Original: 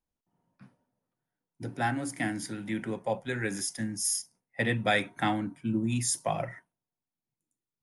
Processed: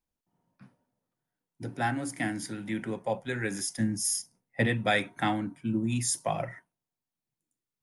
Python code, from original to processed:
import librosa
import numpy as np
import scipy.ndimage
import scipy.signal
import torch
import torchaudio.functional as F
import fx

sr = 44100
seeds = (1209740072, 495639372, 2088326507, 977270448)

y = fx.low_shelf(x, sr, hz=490.0, db=6.5, at=(3.78, 4.67))